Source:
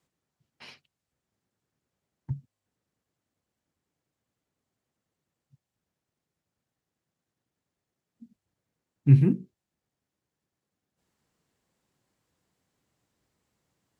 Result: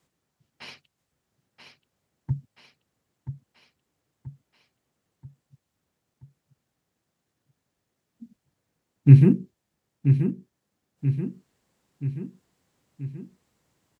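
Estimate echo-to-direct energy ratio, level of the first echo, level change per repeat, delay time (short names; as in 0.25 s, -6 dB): -6.5 dB, -8.0 dB, -5.0 dB, 0.981 s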